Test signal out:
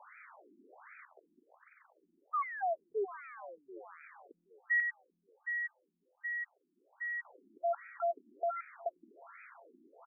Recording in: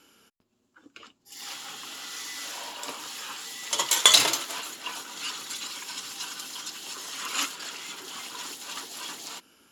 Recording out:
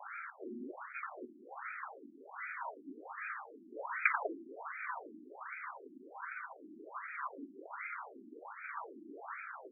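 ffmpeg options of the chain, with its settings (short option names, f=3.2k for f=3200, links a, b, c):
-filter_complex "[0:a]aeval=exprs='val(0)+0.5*0.0531*sgn(val(0))':c=same,highpass=130,acrossover=split=200[a][b];[a]acompressor=threshold=-59dB:ratio=6[c];[c][b]amix=inputs=2:normalize=0,aeval=exprs='0.944*(cos(1*acos(clip(val(0)/0.944,-1,1)))-cos(1*PI/2))+0.299*(cos(3*acos(clip(val(0)/0.944,-1,1)))-cos(3*PI/2))+0.0596*(cos(5*acos(clip(val(0)/0.944,-1,1)))-cos(5*PI/2))+0.266*(cos(6*acos(clip(val(0)/0.944,-1,1)))-cos(6*PI/2))+0.211*(cos(8*acos(clip(val(0)/0.944,-1,1)))-cos(8*PI/2))':c=same,asplit=2[d][e];[e]adelay=789,lowpass=f=3.2k:p=1,volume=-21dB,asplit=2[f][g];[g]adelay=789,lowpass=f=3.2k:p=1,volume=0.43,asplit=2[h][i];[i]adelay=789,lowpass=f=3.2k:p=1,volume=0.43[j];[f][h][j]amix=inputs=3:normalize=0[k];[d][k]amix=inputs=2:normalize=0,afftfilt=real='re*between(b*sr/1024,260*pow(1800/260,0.5+0.5*sin(2*PI*1.3*pts/sr))/1.41,260*pow(1800/260,0.5+0.5*sin(2*PI*1.3*pts/sr))*1.41)':imag='im*between(b*sr/1024,260*pow(1800/260,0.5+0.5*sin(2*PI*1.3*pts/sr))/1.41,260*pow(1800/260,0.5+0.5*sin(2*PI*1.3*pts/sr))*1.41)':win_size=1024:overlap=0.75,volume=2.5dB"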